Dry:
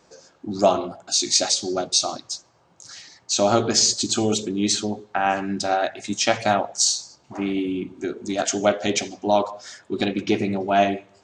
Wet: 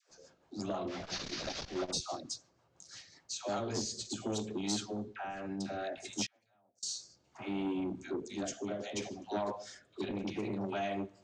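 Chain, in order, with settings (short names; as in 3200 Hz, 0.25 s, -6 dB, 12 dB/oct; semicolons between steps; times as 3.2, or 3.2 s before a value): 0.87–1.91 delta modulation 32 kbps, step -25 dBFS; low shelf 65 Hz +7.5 dB; 9.94–10.52 transient shaper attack -4 dB, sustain +5 dB; limiter -15 dBFS, peak gain reduction 11 dB; dispersion lows, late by 0.106 s, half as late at 630 Hz; rotary speaker horn 6 Hz, later 0.65 Hz, at 2.8; 6.26–6.83 flipped gate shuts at -26 dBFS, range -35 dB; core saturation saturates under 850 Hz; gain -8.5 dB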